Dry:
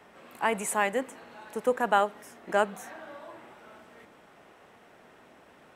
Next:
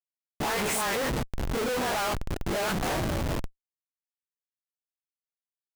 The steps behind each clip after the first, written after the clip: spectral dilation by 60 ms; dispersion highs, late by 79 ms, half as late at 840 Hz; Schmitt trigger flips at -36.5 dBFS; gain +1 dB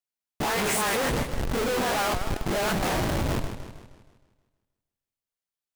warbling echo 0.157 s, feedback 48%, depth 197 cents, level -9 dB; gain +2 dB

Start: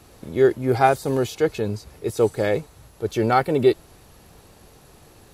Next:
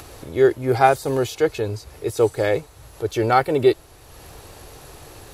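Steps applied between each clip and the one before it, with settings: in parallel at -3 dB: upward compressor, threshold -26 dBFS; on the sum: bell 200 Hz -12.5 dB 0.56 oct; gain -2.5 dB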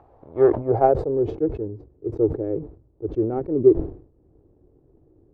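power-law curve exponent 1.4; low-pass sweep 810 Hz -> 330 Hz, 0.46–1.36; sustainer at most 120 dB/s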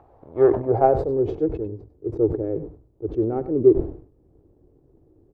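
echo 98 ms -14 dB

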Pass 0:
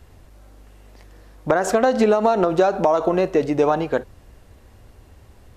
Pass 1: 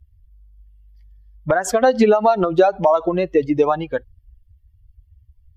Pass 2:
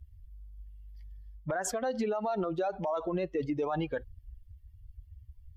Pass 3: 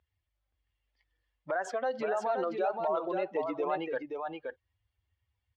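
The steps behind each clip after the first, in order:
per-bin expansion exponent 2; gain +5.5 dB
reverse; compressor 12:1, threshold -22 dBFS, peak gain reduction 14.5 dB; reverse; limiter -24 dBFS, peak gain reduction 10.5 dB
BPF 440–3000 Hz; echo 0.524 s -5 dB; gain +2 dB

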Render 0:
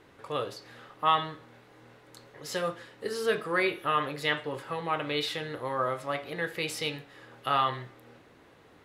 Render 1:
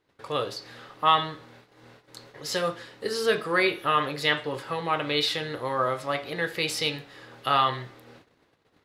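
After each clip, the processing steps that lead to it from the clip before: bell 4600 Hz +5.5 dB 0.86 oct; gate -54 dBFS, range -21 dB; gain +3.5 dB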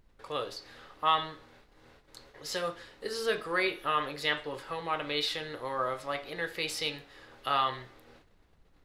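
low shelf 160 Hz -9 dB; added noise brown -57 dBFS; gain -5.5 dB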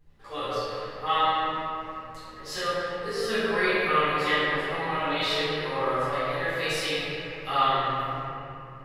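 chorus voices 2, 0.6 Hz, delay 13 ms, depth 3.5 ms; reverb RT60 2.8 s, pre-delay 4 ms, DRR -13.5 dB; gain -4.5 dB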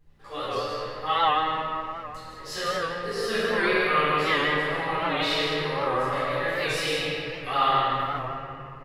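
loudspeakers at several distances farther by 34 m -10 dB, 54 m -6 dB; record warp 78 rpm, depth 100 cents

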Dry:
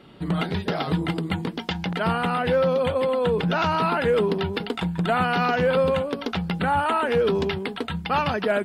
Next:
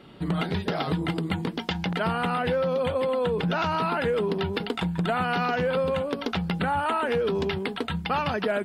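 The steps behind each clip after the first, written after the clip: compressor, threshold -22 dBFS, peak gain reduction 5.5 dB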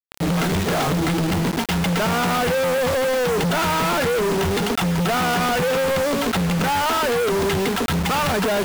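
high shelf 5400 Hz -11 dB; companded quantiser 2-bit; gain +5.5 dB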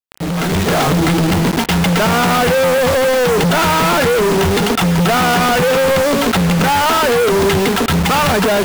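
AGC gain up to 7 dB; on a send at -23 dB: reverb RT60 2.8 s, pre-delay 35 ms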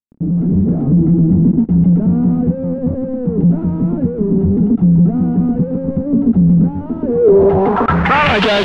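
low-pass sweep 240 Hz -> 3500 Hz, 6.97–8.47

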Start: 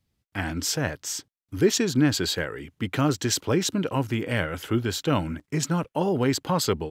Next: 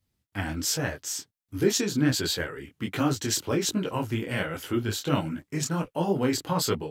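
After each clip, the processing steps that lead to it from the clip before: high shelf 8600 Hz +6 dB; detuned doubles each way 46 cents; gain +1 dB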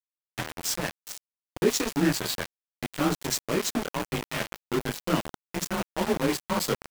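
frequency shift +30 Hz; sample gate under -25 dBFS

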